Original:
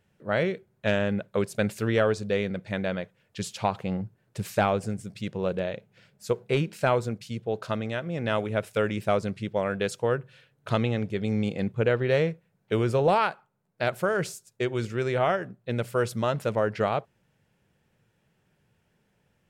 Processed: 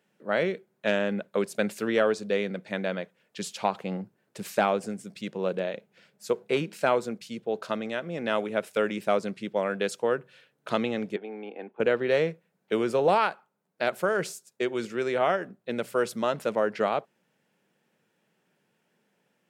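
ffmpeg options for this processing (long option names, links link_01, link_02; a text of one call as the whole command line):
ffmpeg -i in.wav -filter_complex "[0:a]asettb=1/sr,asplit=3[link_01][link_02][link_03];[link_01]atrim=end=11.164[link_04];[link_02]atrim=start=11.16:end=11.8,asetpts=PTS-STARTPTS,afade=type=in:duration=0.004:curve=qsin,afade=type=out:start_time=0.636:duration=0.004:curve=qsin,highpass=frequency=340:width=0.5412,highpass=frequency=340:width=1.3066,equalizer=frequency=360:width_type=q:width=4:gain=-3,equalizer=frequency=540:width_type=q:width=4:gain=-9,equalizer=frequency=820:width_type=q:width=4:gain=6,equalizer=frequency=1200:width_type=q:width=4:gain=-9,equalizer=frequency=2000:width_type=q:width=4:gain=-9,lowpass=frequency=2300:width=0.5412,lowpass=frequency=2300:width=1.3066[link_05];[link_03]atrim=start=11.796[link_06];[link_04][link_05]acrossfade=duration=0.004:curve1=hsin:curve2=qsin[link_07];[link_07][link_06]acrossfade=duration=0.004:curve1=qsin:curve2=hsin,highpass=frequency=190:width=0.5412,highpass=frequency=190:width=1.3066" out.wav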